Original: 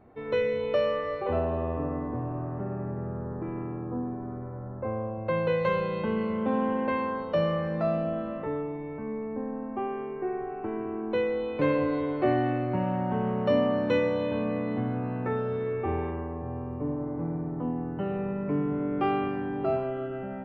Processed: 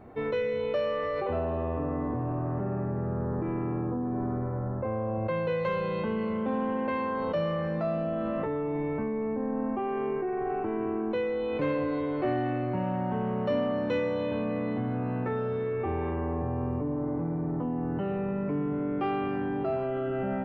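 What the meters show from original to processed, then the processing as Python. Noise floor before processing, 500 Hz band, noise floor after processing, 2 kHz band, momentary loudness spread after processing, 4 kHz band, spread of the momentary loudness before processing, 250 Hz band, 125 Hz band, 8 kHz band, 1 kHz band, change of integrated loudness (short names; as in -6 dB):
-37 dBFS, -1.0 dB, -31 dBFS, -1.5 dB, 3 LU, -2.5 dB, 9 LU, 0.0 dB, +0.5 dB, n/a, -1.0 dB, -0.5 dB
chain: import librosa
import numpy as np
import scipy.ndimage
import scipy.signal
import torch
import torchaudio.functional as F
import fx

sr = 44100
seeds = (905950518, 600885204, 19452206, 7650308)

p1 = fx.over_compress(x, sr, threshold_db=-36.0, ratio=-1.0)
p2 = x + F.gain(torch.from_numpy(p1), 2.0).numpy()
p3 = 10.0 ** (-13.0 / 20.0) * np.tanh(p2 / 10.0 ** (-13.0 / 20.0))
y = F.gain(torch.from_numpy(p3), -4.0).numpy()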